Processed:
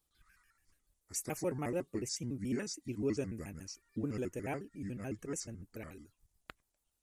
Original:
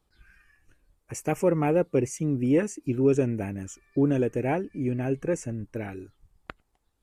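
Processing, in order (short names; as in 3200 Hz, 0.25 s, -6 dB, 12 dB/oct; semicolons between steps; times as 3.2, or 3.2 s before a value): trilling pitch shifter -4 st, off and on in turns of 72 ms; pre-emphasis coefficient 0.8; gain +1 dB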